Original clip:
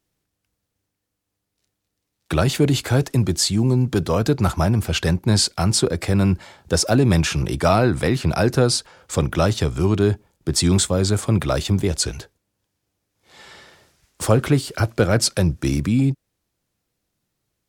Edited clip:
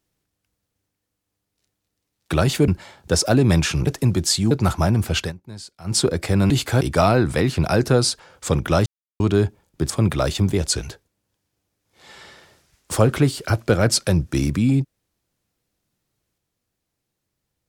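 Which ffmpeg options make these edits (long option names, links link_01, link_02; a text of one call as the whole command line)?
ffmpeg -i in.wav -filter_complex "[0:a]asplit=11[link_01][link_02][link_03][link_04][link_05][link_06][link_07][link_08][link_09][link_10][link_11];[link_01]atrim=end=2.682[link_12];[link_02]atrim=start=6.288:end=7.482[link_13];[link_03]atrim=start=2.988:end=3.632[link_14];[link_04]atrim=start=4.298:end=5.12,asetpts=PTS-STARTPTS,afade=type=out:start_time=0.692:duration=0.13:silence=0.1[link_15];[link_05]atrim=start=5.12:end=5.63,asetpts=PTS-STARTPTS,volume=-20dB[link_16];[link_06]atrim=start=5.63:end=6.292,asetpts=PTS-STARTPTS,afade=type=in:duration=0.13:silence=0.1[link_17];[link_07]atrim=start=2.678:end=2.992[link_18];[link_08]atrim=start=7.478:end=9.53,asetpts=PTS-STARTPTS,afade=type=out:start_time=2.048:duration=0.004:curve=hsin[link_19];[link_09]atrim=start=9.53:end=9.87,asetpts=PTS-STARTPTS,volume=0[link_20];[link_10]atrim=start=9.87:end=10.572,asetpts=PTS-STARTPTS,afade=type=in:duration=0.004:curve=hsin[link_21];[link_11]atrim=start=11.198[link_22];[link_12][link_13]acrossfade=duration=0.004:curve1=hsin:curve2=hsin[link_23];[link_23][link_14]acrossfade=duration=0.004:curve1=hsin:curve2=hsin[link_24];[link_15][link_16][link_17]concat=n=3:v=0:a=1[link_25];[link_24][link_25]acrossfade=duration=0.004:curve1=hsin:curve2=hsin[link_26];[link_26][link_18]acrossfade=duration=0.004:curve1=hsin:curve2=hsin[link_27];[link_19][link_20][link_21]concat=n=3:v=0:a=1[link_28];[link_27][link_28]acrossfade=duration=0.004:curve1=hsin:curve2=hsin[link_29];[link_29][link_22]acrossfade=duration=0.004:curve1=hsin:curve2=hsin" out.wav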